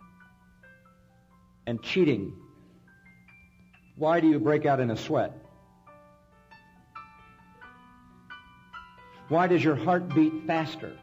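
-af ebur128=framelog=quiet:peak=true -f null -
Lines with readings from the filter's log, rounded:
Integrated loudness:
  I:         -25.9 LUFS
  Threshold: -40.0 LUFS
Loudness range:
  LRA:         9.9 LU
  Threshold: -50.4 LUFS
  LRA low:   -37.9 LUFS
  LRA high:  -28.0 LUFS
True peak:
  Peak:      -12.7 dBFS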